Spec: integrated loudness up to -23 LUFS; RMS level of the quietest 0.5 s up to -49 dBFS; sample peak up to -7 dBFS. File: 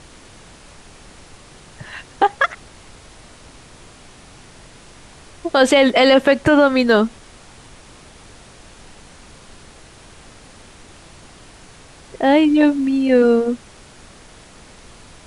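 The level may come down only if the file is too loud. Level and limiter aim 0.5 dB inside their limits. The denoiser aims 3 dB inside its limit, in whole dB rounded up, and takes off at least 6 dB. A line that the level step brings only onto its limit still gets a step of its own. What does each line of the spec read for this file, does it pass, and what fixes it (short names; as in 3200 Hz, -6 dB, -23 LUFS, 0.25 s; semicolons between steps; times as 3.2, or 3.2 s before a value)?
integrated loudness -15.5 LUFS: fail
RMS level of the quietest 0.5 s -43 dBFS: fail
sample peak -4.0 dBFS: fail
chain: gain -8 dB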